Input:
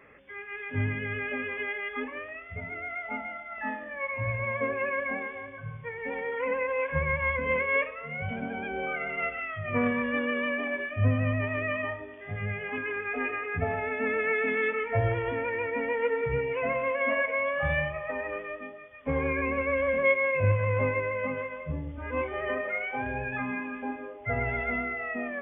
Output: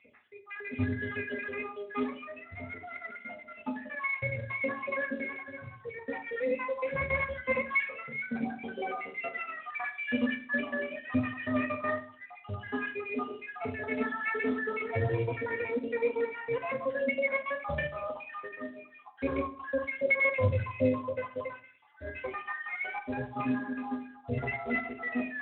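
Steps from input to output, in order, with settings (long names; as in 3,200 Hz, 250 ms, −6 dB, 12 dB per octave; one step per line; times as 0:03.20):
time-frequency cells dropped at random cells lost 63%
0:08.72–0:09.90: high-pass filter 200 Hz 12 dB per octave
pitch vibrato 1.2 Hz 6.3 cents
delay with a high-pass on its return 105 ms, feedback 56%, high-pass 3,000 Hz, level −20 dB
on a send at −2.5 dB: convolution reverb RT60 0.45 s, pre-delay 4 ms
on the sum: level −1.5 dB
Speex 18 kbit/s 8,000 Hz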